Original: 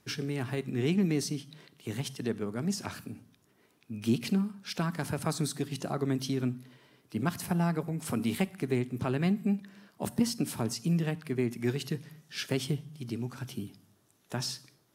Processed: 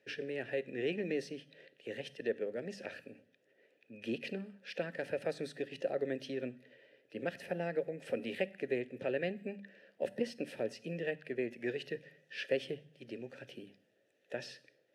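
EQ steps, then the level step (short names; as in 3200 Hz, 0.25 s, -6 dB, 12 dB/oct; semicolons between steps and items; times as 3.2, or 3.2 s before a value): notches 50/100/150/200 Hz; dynamic EQ 7000 Hz, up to -4 dB, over -57 dBFS, Q 4.3; vowel filter e; +9.5 dB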